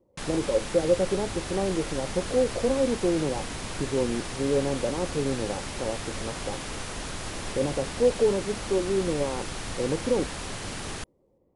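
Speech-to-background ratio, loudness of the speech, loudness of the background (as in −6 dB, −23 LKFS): 6.5 dB, −28.5 LKFS, −35.0 LKFS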